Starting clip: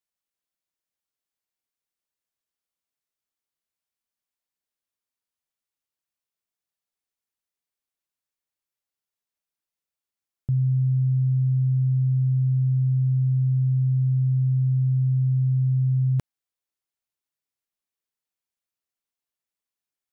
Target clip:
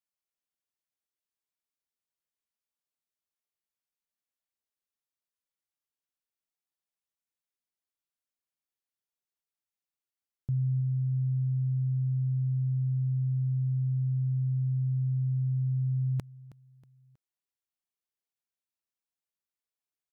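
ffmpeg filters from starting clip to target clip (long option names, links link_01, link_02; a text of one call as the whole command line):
ffmpeg -i in.wav -af "aecho=1:1:319|638|957:0.119|0.0499|0.021,volume=-6.5dB" out.wav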